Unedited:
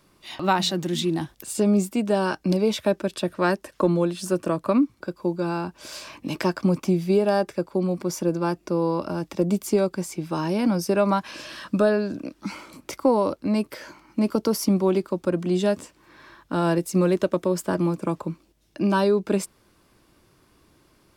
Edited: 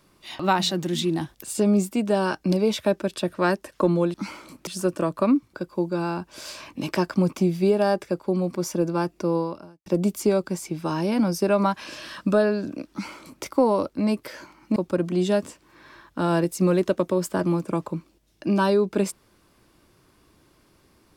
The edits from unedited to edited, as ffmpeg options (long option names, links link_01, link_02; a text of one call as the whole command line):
ffmpeg -i in.wav -filter_complex "[0:a]asplit=5[link_01][link_02][link_03][link_04][link_05];[link_01]atrim=end=4.142[link_06];[link_02]atrim=start=12.378:end=12.912[link_07];[link_03]atrim=start=4.138:end=9.33,asetpts=PTS-STARTPTS,afade=type=out:start_time=4.692:duration=0.5:curve=qua[link_08];[link_04]atrim=start=9.33:end=14.232,asetpts=PTS-STARTPTS,afade=type=in:duration=0.004:curve=hsin[link_09];[link_05]atrim=start=15.098[link_10];[link_06][link_07]acrossfade=duration=0.004:curve1=hsin:curve2=hsin[link_11];[link_08][link_09]concat=n=2:v=0:a=1[link_12];[link_11][link_12]acrossfade=duration=0.004:curve1=hsin:curve2=hsin[link_13];[link_13][link_10]acrossfade=duration=0.004:curve1=hsin:curve2=hsin" out.wav